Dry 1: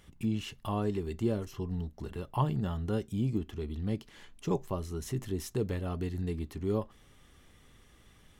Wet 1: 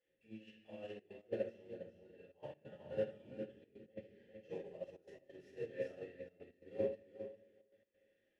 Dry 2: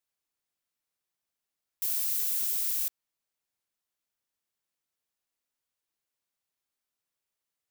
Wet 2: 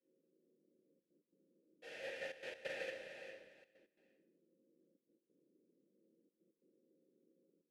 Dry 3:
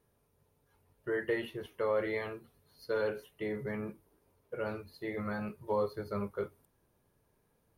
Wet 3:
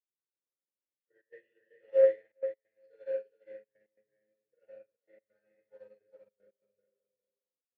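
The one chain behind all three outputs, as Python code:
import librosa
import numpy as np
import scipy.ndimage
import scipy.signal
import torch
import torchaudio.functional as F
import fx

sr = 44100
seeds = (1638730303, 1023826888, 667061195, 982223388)

p1 = fx.cvsd(x, sr, bps=64000)
p2 = fx.dmg_noise_band(p1, sr, seeds[0], low_hz=160.0, high_hz=370.0, level_db=-67.0)
p3 = fx.vowel_filter(p2, sr, vowel='e')
p4 = p3 + fx.echo_feedback(p3, sr, ms=405, feedback_pct=23, wet_db=-4.5, dry=0)
p5 = fx.room_shoebox(p4, sr, seeds[1], volume_m3=240.0, walls='mixed', distance_m=5.4)
p6 = fx.step_gate(p5, sr, bpm=136, pattern='xxxxxxxxx.x.', floor_db=-12.0, edge_ms=4.5)
p7 = fx.dynamic_eq(p6, sr, hz=470.0, q=0.88, threshold_db=-37.0, ratio=4.0, max_db=-5)
p8 = fx.upward_expand(p7, sr, threshold_db=-40.0, expansion=2.5)
y = F.gain(torch.from_numpy(p8), -4.0).numpy()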